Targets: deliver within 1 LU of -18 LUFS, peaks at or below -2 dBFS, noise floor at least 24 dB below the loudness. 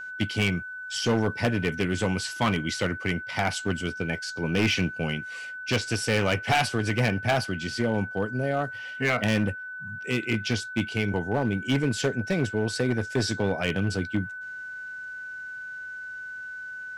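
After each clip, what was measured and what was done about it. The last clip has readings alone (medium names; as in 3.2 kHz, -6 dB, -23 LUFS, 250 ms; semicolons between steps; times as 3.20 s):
clipped samples 1.3%; clipping level -17.5 dBFS; steady tone 1.5 kHz; tone level -35 dBFS; loudness -27.5 LUFS; peak level -17.5 dBFS; loudness target -18.0 LUFS
-> clip repair -17.5 dBFS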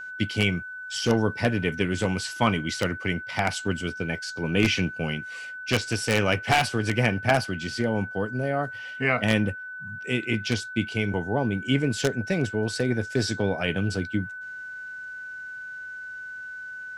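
clipped samples 0.0%; steady tone 1.5 kHz; tone level -35 dBFS
-> band-stop 1.5 kHz, Q 30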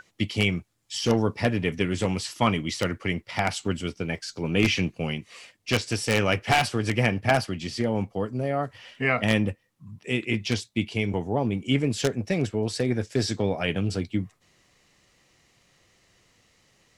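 steady tone not found; loudness -26.5 LUFS; peak level -8.0 dBFS; loudness target -18.0 LUFS
-> trim +8.5 dB; peak limiter -2 dBFS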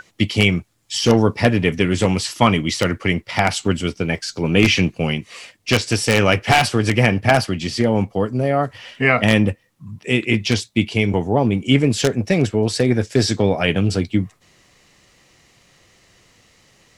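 loudness -18.5 LUFS; peak level -2.0 dBFS; noise floor -58 dBFS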